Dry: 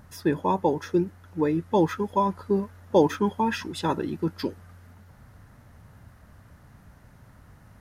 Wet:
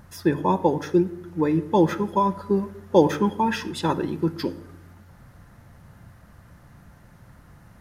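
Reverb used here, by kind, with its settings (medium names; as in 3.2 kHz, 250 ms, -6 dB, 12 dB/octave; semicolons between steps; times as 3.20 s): simulated room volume 2700 m³, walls furnished, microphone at 0.82 m; trim +2 dB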